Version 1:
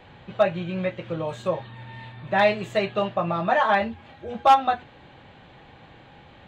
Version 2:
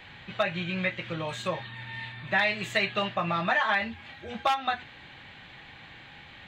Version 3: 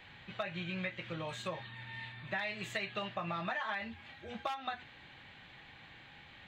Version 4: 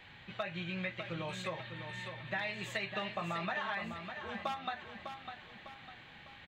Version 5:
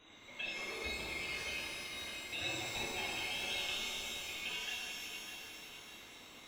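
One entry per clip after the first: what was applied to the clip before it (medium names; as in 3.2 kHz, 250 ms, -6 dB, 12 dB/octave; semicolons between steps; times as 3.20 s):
ten-band graphic EQ 500 Hz -5 dB, 2 kHz +9 dB, 4 kHz +4 dB; compression 12:1, threshold -19 dBFS, peak gain reduction 10.5 dB; treble shelf 4.2 kHz +8.5 dB; trim -3 dB
compression 5:1, threshold -27 dBFS, peak gain reduction 7 dB; trim -7 dB
feedback delay 602 ms, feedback 42%, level -8 dB
split-band scrambler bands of 2 kHz; pitch-shifted reverb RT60 2.2 s, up +12 st, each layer -8 dB, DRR -5.5 dB; trim -8 dB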